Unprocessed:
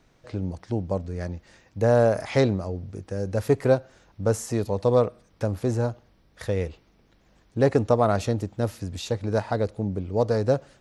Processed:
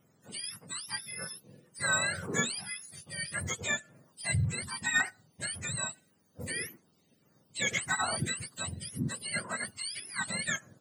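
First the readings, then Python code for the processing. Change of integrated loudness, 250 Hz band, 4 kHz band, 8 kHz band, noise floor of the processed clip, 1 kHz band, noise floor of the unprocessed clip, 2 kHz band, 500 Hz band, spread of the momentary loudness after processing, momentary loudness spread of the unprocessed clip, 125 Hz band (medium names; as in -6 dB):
-8.0 dB, -14.5 dB, +5.5 dB, +9.5 dB, -69 dBFS, -9.0 dB, -61 dBFS, +6.5 dB, -22.5 dB, 11 LU, 13 LU, -12.5 dB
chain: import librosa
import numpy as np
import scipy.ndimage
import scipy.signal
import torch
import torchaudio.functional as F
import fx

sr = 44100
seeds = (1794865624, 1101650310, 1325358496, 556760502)

p1 = fx.octave_mirror(x, sr, pivot_hz=960.0)
p2 = fx.filter_lfo_notch(p1, sr, shape='saw_down', hz=1.8, low_hz=840.0, high_hz=4500.0, q=1.3)
p3 = np.clip(10.0 ** (20.0 / 20.0) * p2, -1.0, 1.0) / 10.0 ** (20.0 / 20.0)
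p4 = p2 + F.gain(torch.from_numpy(p3), -10.5).numpy()
y = F.gain(torch.from_numpy(p4), -6.0).numpy()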